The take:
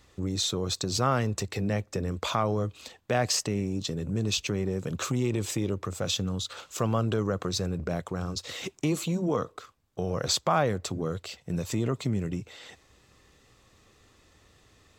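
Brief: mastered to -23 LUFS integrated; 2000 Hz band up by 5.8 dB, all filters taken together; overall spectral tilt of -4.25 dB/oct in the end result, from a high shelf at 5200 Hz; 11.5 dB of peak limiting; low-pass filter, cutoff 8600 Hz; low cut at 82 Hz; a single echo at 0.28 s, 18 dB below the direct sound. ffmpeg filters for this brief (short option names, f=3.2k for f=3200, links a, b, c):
-af "highpass=82,lowpass=8.6k,equalizer=f=2k:t=o:g=6.5,highshelf=f=5.2k:g=7.5,alimiter=limit=-20dB:level=0:latency=1,aecho=1:1:280:0.126,volume=8dB"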